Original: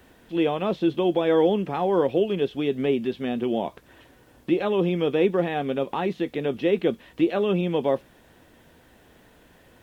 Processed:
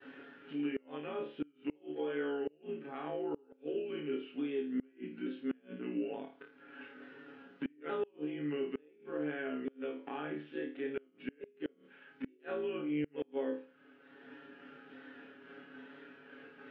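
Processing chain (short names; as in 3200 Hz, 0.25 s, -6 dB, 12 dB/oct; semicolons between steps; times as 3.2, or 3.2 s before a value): repeated pitch sweeps -3 st, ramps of 0.516 s; expander -54 dBFS; tilt +2 dB/oct; compressor 2:1, threshold -53 dBFS, peak gain reduction 18 dB; granular stretch 1.7×, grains 35 ms; speaker cabinet 250–2600 Hz, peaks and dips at 260 Hz +9 dB, 430 Hz +3 dB, 660 Hz -9 dB, 1000 Hz -8 dB, 1500 Hz +4 dB, 2200 Hz -5 dB; on a send: flutter echo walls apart 4.6 m, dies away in 0.36 s; on the sum: flipped gate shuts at -31 dBFS, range -30 dB; gain +5 dB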